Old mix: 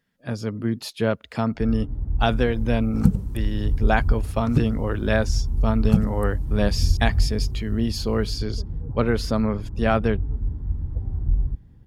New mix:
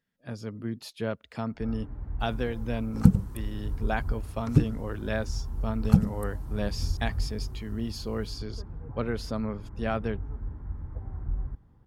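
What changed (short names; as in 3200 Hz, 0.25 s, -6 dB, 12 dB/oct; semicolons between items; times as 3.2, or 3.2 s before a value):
speech -9.0 dB; first sound: add tilt shelf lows -10 dB, about 660 Hz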